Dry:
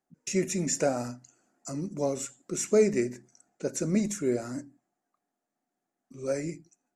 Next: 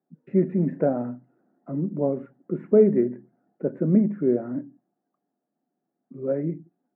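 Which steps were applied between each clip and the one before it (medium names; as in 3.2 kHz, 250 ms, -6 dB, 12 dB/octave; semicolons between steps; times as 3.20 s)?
elliptic band-pass 150–1800 Hz, stop band 50 dB; tilt shelf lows +9.5 dB, about 880 Hz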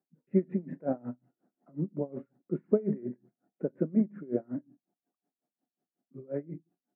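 logarithmic tremolo 5.5 Hz, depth 26 dB; trim -2.5 dB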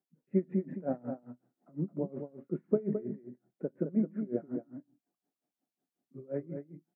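in parallel at 0 dB: gain riding within 4 dB 2 s; on the sum: delay 215 ms -7.5 dB; trim -8.5 dB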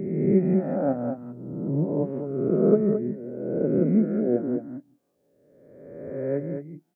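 reverse spectral sustain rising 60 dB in 1.48 s; trim +6.5 dB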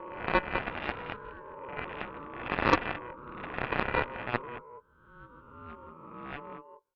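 ever faster or slower copies 372 ms, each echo +3 st, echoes 2, each echo -6 dB; ring modulator 730 Hz; Chebyshev shaper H 3 -26 dB, 6 -26 dB, 7 -15 dB, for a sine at -5.5 dBFS; trim -1 dB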